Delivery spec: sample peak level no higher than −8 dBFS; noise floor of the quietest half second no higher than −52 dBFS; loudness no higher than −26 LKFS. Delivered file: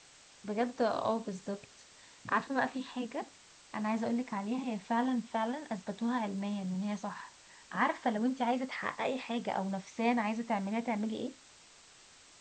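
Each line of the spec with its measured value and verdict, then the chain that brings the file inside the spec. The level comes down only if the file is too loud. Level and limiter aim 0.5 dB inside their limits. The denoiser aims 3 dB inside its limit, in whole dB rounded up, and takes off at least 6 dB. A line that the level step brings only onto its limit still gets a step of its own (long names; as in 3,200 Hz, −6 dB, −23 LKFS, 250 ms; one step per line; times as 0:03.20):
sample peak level −16.5 dBFS: in spec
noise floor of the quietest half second −59 dBFS: in spec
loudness −35.0 LKFS: in spec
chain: no processing needed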